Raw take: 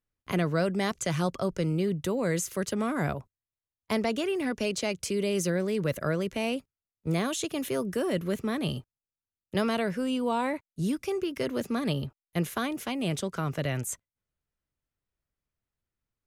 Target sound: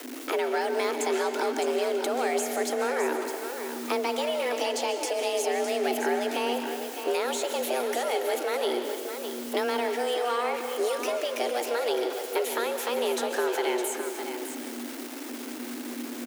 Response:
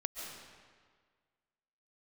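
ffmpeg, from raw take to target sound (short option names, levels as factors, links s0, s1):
-filter_complex "[0:a]aeval=exprs='val(0)+0.5*0.0133*sgn(val(0))':c=same,acrossover=split=150|910[s0][s1][s2];[s0]acompressor=threshold=0.0126:ratio=4[s3];[s1]acompressor=threshold=0.0141:ratio=4[s4];[s2]acompressor=threshold=0.0112:ratio=4[s5];[s3][s4][s5]amix=inputs=3:normalize=0,aecho=1:1:610:0.376,asplit=2[s6][s7];[1:a]atrim=start_sample=2205[s8];[s7][s8]afir=irnorm=-1:irlink=0,volume=1.19[s9];[s6][s9]amix=inputs=2:normalize=0,afreqshift=240"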